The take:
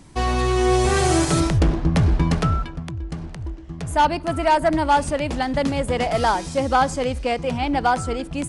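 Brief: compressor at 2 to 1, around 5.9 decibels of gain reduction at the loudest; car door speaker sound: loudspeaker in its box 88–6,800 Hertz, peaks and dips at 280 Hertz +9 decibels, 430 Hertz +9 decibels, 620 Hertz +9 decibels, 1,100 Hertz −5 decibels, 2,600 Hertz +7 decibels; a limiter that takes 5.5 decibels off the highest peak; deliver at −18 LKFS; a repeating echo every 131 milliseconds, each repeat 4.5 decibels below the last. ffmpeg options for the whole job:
ffmpeg -i in.wav -af "acompressor=threshold=-24dB:ratio=2,alimiter=limit=-18dB:level=0:latency=1,highpass=88,equalizer=frequency=280:width_type=q:width=4:gain=9,equalizer=frequency=430:width_type=q:width=4:gain=9,equalizer=frequency=620:width_type=q:width=4:gain=9,equalizer=frequency=1100:width_type=q:width=4:gain=-5,equalizer=frequency=2600:width_type=q:width=4:gain=7,lowpass=frequency=6800:width=0.5412,lowpass=frequency=6800:width=1.3066,aecho=1:1:131|262|393|524|655|786|917|1048|1179:0.596|0.357|0.214|0.129|0.0772|0.0463|0.0278|0.0167|0.01,volume=3.5dB" out.wav

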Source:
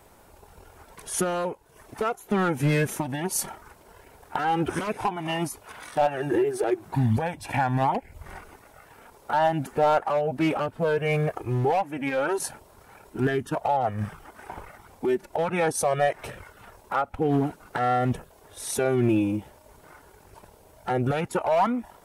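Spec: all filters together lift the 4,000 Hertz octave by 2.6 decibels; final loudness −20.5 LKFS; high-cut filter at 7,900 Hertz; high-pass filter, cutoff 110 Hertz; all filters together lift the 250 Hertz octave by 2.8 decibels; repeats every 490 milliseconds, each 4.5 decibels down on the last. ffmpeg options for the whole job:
ffmpeg -i in.wav -af "highpass=110,lowpass=7900,equalizer=frequency=250:width_type=o:gain=4,equalizer=frequency=4000:width_type=o:gain=4,aecho=1:1:490|980|1470|1960|2450|2940|3430|3920|4410:0.596|0.357|0.214|0.129|0.0772|0.0463|0.0278|0.0167|0.01,volume=4dB" out.wav

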